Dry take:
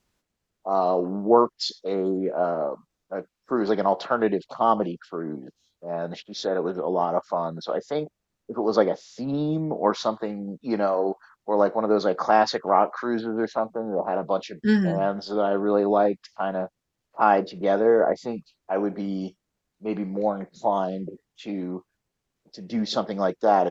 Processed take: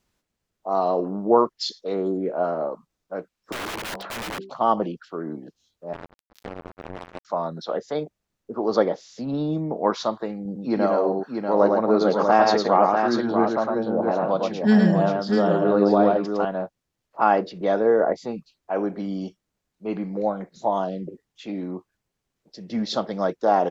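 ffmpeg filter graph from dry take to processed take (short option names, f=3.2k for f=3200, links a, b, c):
-filter_complex "[0:a]asettb=1/sr,asplit=3[a][b][c];[a]atrim=end=3.524[d];[b]atrim=start=3.52:end=4.5,asetpts=PTS-STARTPTS,afade=t=in:d=0.004:c=qsin,afade=t=out:st=0.976:d=0.004:c=qsin,bandreject=f=64.77:t=h:w=4,bandreject=f=129.54:t=h:w=4,bandreject=f=194.31:t=h:w=4,bandreject=f=259.08:t=h:w=4,bandreject=f=323.85:t=h:w=4,bandreject=f=388.62:t=h:w=4,aeval=exprs='(mod(16.8*val(0)+1,2)-1)/16.8':c=same,bass=f=250:g=-4,treble=f=4k:g=-7[e];[c]atrim=start=4.496[f];[d][e]acrossfade=d=0.004:c1=hsin:c2=qsin[g];[g][f]acrossfade=d=0.004:c1=qsin:c2=hsin,asettb=1/sr,asplit=3[h][i][j];[h]atrim=end=5.934[k];[i]atrim=start=5.93:end=7.25,asetpts=PTS-STARTPTS,afade=t=in:d=0.004:c=qsin,afade=t=out:st=1.316:d=0.004:c=qsin,tremolo=f=280:d=0.857,acrossover=split=330|3000[l][m][n];[l]acompressor=threshold=-38dB:ratio=4[o];[m]acompressor=threshold=-39dB:ratio=4[p];[n]acompressor=threshold=-45dB:ratio=4[q];[o][p][q]amix=inputs=3:normalize=0,acrusher=bits=4:mix=0:aa=0.5[r];[j]atrim=start=7.246[s];[k][r]acrossfade=d=0.004:c1=hsin:c2=qsin[t];[t][s]acrossfade=d=0.004:c1=qsin:c2=hsin,asettb=1/sr,asplit=3[u][v][w];[u]atrim=end=10.454[x];[v]atrim=start=10.45:end=16.45,asetpts=PTS-STARTPTS,afade=t=in:d=0.004:c=qsin,afade=t=out:st=5.996:d=0.004:c=qsin,highpass=88,lowshelf=f=230:g=5.5,aecho=1:1:108|641:0.668|0.531,atrim=end_sample=264600[y];[w]atrim=start=16.446[z];[x][y]acrossfade=d=0.004:c1=hsin:c2=qsin[aa];[aa][z]acrossfade=d=0.004:c1=qsin:c2=hsin"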